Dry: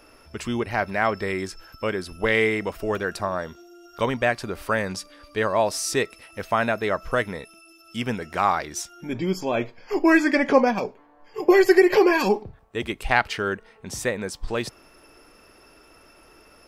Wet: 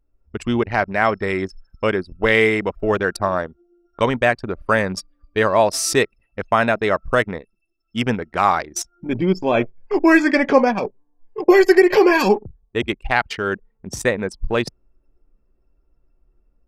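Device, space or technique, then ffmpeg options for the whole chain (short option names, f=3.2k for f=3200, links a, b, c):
voice memo with heavy noise removal: -af "anlmdn=25.1,dynaudnorm=f=150:g=3:m=7dB"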